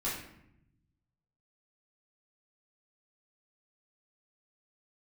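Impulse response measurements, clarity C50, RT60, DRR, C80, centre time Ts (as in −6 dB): 2.5 dB, 0.75 s, −9.5 dB, 6.5 dB, 49 ms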